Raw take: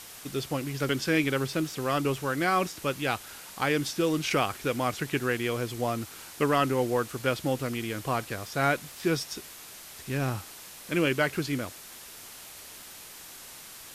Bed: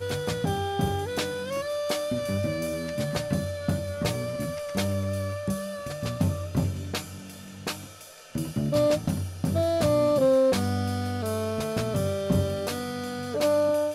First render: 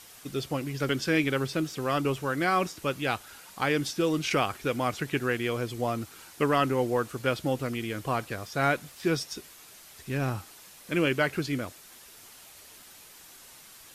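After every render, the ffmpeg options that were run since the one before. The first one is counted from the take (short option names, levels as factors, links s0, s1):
-af "afftdn=nr=6:nf=-46"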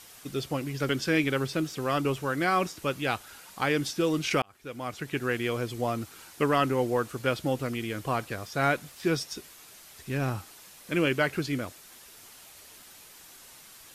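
-filter_complex "[0:a]asplit=2[s0][s1];[s0]atrim=end=4.42,asetpts=PTS-STARTPTS,afade=t=out:st=4.416:d=0.004:c=hsin[s2];[s1]atrim=start=4.42,asetpts=PTS-STARTPTS,afade=t=in:d=0.96[s3];[s2][s3]concat=n=2:v=0:a=1"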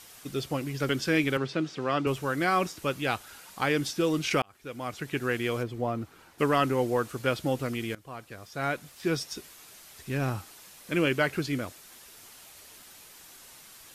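-filter_complex "[0:a]asettb=1/sr,asplit=3[s0][s1][s2];[s0]atrim=end=1.374[s3];[s1]atrim=start=1.37:end=2.07,asetpts=PTS-STARTPTS,afade=t=in:d=0.004:c=qsin,afade=t=out:st=0.696:d=0.004:c=qsin,highpass=130,lowpass=4500[s4];[s2]atrim=start=2.066[s5];[s3][s4]acrossfade=d=0.004:c1=hsin:c2=qsin[s6];[s6][s5]acrossfade=d=0.004:c1=qsin:c2=hsin,asplit=3[s7][s8][s9];[s7]afade=t=out:st=5.62:d=0.02[s10];[s8]equalizer=f=10000:t=o:w=3:g=-14,afade=t=in:st=5.62:d=0.02,afade=t=out:st=6.38:d=0.02[s11];[s9]afade=t=in:st=6.38:d=0.02[s12];[s10][s11][s12]amix=inputs=3:normalize=0,asplit=2[s13][s14];[s13]atrim=end=7.95,asetpts=PTS-STARTPTS,afade=t=out:st=7.946:d=0.004:c=hsin:silence=0.112202[s15];[s14]atrim=start=7.95,asetpts=PTS-STARTPTS,afade=t=in:d=1.39:silence=0.112202[s16];[s15][s16]concat=n=2:v=0:a=1"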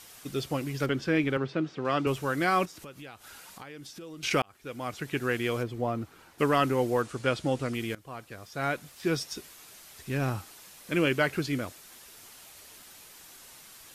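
-filter_complex "[0:a]asettb=1/sr,asplit=3[s0][s1][s2];[s0]atrim=end=0.864[s3];[s1]atrim=start=0.86:end=1.85,asetpts=PTS-STARTPTS,afade=t=in:d=0.004:c=qsin,afade=t=out:st=0.986:d=0.004:c=qsin,lowpass=f=2000:p=1[s4];[s2]atrim=start=1.846[s5];[s3][s4]acrossfade=d=0.004:c1=hsin:c2=qsin[s6];[s6][s5]acrossfade=d=0.004:c1=qsin:c2=hsin,asettb=1/sr,asplit=3[s7][s8][s9];[s7]atrim=end=2.654[s10];[s8]atrim=start=2.65:end=4.23,asetpts=PTS-STARTPTS,afade=t=in:d=0.004:c=qsin,afade=t=out:st=1.576:d=0.004:c=qsin,acompressor=threshold=0.00708:ratio=5:attack=3.2:release=140:knee=1:detection=peak[s11];[s9]atrim=start=4.226[s12];[s10][s11]acrossfade=d=0.004:c1=hsin:c2=qsin[s13];[s13][s12]acrossfade=d=0.004:c1=qsin:c2=hsin,asettb=1/sr,asplit=3[s14][s15][s16];[s14]atrim=end=7.024[s17];[s15]atrim=start=7.02:end=7.74,asetpts=PTS-STARTPTS,afade=t=in:d=0.004:c=qsin,afade=t=out:st=0.716:d=0.004:c=qsin,lowpass=f=9700:w=0.5412,lowpass=f=9700:w=1.3066[s18];[s16]atrim=start=7.736[s19];[s17][s18]acrossfade=d=0.004:c1=hsin:c2=qsin[s20];[s20][s19]acrossfade=d=0.004:c1=qsin:c2=hsin"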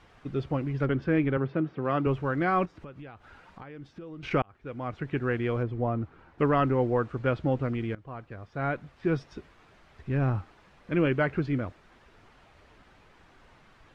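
-af "lowpass=1800,lowshelf=f=110:g=11.5"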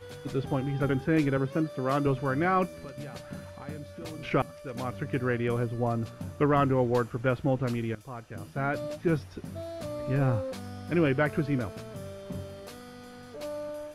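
-filter_complex "[1:a]volume=0.2[s0];[0:a][s0]amix=inputs=2:normalize=0"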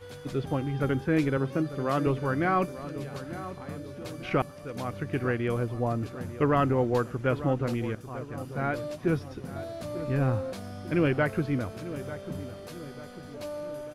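-filter_complex "[0:a]asplit=2[s0][s1];[s1]adelay=895,lowpass=f=1700:p=1,volume=0.224,asplit=2[s2][s3];[s3]adelay=895,lowpass=f=1700:p=1,volume=0.51,asplit=2[s4][s5];[s5]adelay=895,lowpass=f=1700:p=1,volume=0.51,asplit=2[s6][s7];[s7]adelay=895,lowpass=f=1700:p=1,volume=0.51,asplit=2[s8][s9];[s9]adelay=895,lowpass=f=1700:p=1,volume=0.51[s10];[s0][s2][s4][s6][s8][s10]amix=inputs=6:normalize=0"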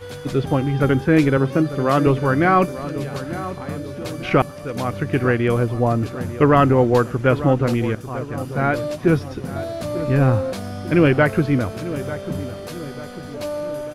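-af "volume=3.16"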